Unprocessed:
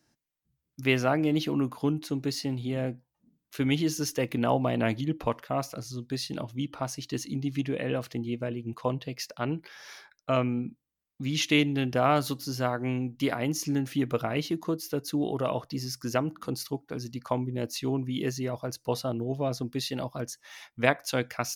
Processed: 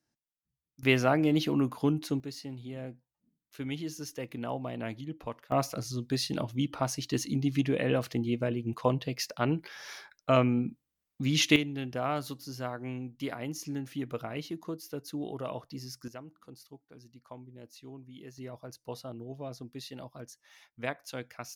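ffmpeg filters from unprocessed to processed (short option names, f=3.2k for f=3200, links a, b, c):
-af "asetnsamples=n=441:p=0,asendcmd='0.83 volume volume 0dB;2.2 volume volume -10dB;5.52 volume volume 2dB;11.56 volume volume -8dB;16.08 volume volume -18dB;18.38 volume volume -11dB',volume=-11.5dB"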